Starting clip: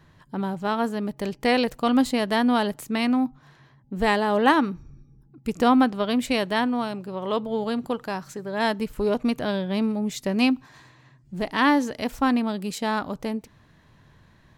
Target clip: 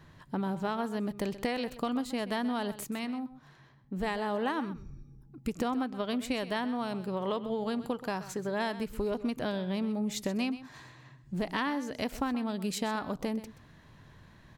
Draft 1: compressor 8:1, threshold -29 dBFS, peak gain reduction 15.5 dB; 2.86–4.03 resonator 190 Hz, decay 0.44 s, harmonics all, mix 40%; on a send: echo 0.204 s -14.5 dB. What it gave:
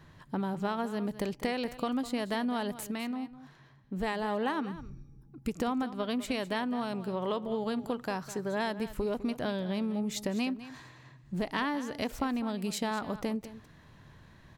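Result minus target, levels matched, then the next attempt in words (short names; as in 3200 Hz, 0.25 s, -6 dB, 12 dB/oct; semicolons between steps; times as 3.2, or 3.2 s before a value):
echo 76 ms late
compressor 8:1, threshold -29 dBFS, peak gain reduction 15.5 dB; 2.86–4.03 resonator 190 Hz, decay 0.44 s, harmonics all, mix 40%; on a send: echo 0.128 s -14.5 dB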